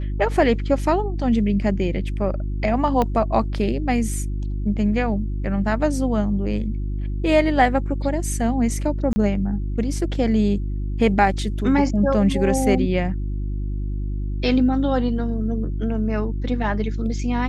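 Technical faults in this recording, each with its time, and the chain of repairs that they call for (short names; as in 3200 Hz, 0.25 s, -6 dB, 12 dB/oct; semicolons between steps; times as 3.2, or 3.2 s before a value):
hum 50 Hz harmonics 7 -25 dBFS
3.02 pop -9 dBFS
9.13–9.16 gap 30 ms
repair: de-click; de-hum 50 Hz, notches 7; interpolate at 9.13, 30 ms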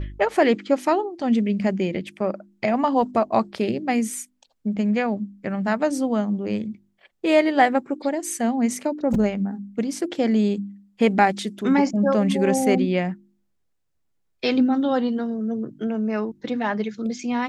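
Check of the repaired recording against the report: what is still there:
3.02 pop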